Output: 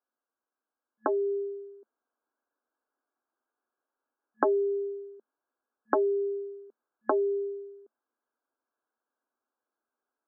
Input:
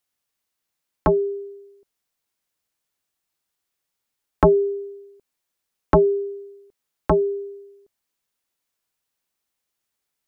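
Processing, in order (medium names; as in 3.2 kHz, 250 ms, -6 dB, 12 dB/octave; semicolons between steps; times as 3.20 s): compression 4:1, threshold -25 dBFS, peak gain reduction 12 dB; FFT band-pass 220–1700 Hz; gain riding 0.5 s; trim +1 dB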